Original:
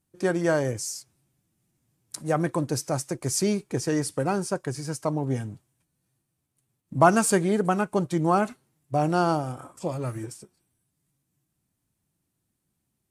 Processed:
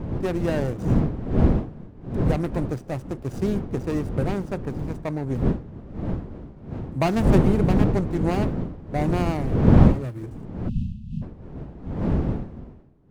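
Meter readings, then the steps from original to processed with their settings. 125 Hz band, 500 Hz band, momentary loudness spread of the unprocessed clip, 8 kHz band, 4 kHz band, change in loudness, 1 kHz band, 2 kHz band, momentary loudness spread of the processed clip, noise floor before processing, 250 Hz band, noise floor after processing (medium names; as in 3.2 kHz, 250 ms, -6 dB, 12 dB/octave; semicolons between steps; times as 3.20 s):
+8.5 dB, 0.0 dB, 13 LU, under -15 dB, -4.0 dB, +2.0 dB, -5.0 dB, -4.0 dB, 17 LU, -79 dBFS, +5.0 dB, -43 dBFS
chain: median filter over 41 samples; wind noise 220 Hz -24 dBFS; spectral selection erased 10.69–11.22 s, 240–2500 Hz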